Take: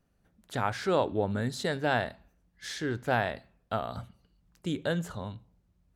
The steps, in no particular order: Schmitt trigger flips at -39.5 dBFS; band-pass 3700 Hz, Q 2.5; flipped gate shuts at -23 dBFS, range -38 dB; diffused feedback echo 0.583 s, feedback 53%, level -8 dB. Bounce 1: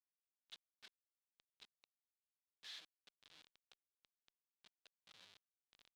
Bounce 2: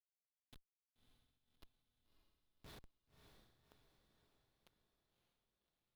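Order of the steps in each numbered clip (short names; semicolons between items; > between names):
flipped gate > diffused feedback echo > Schmitt trigger > band-pass; flipped gate > band-pass > Schmitt trigger > diffused feedback echo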